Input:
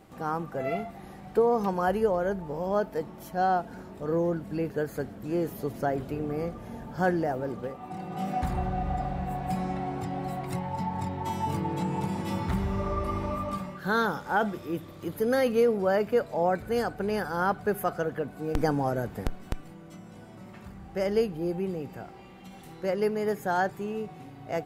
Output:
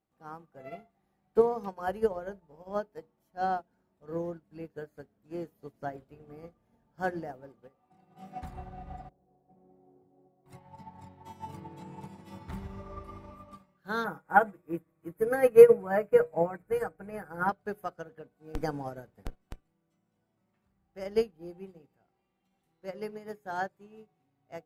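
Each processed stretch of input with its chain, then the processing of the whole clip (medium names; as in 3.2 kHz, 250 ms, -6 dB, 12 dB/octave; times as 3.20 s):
9.09–10.46 s: band-pass filter 420 Hz, Q 2.4 + tilt EQ -2.5 dB/octave
14.04–17.49 s: high-order bell 4.3 kHz -16 dB 1.3 oct + comb 6.3 ms, depth 82%
whole clip: hum notches 60/120/180/240/300/360/420/480/540/600 Hz; upward expansion 2.5:1, over -40 dBFS; trim +7 dB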